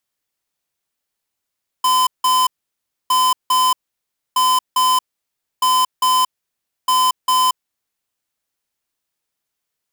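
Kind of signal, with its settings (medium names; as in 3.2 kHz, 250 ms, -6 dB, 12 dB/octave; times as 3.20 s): beep pattern square 1.02 kHz, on 0.23 s, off 0.17 s, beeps 2, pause 0.63 s, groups 5, -14.5 dBFS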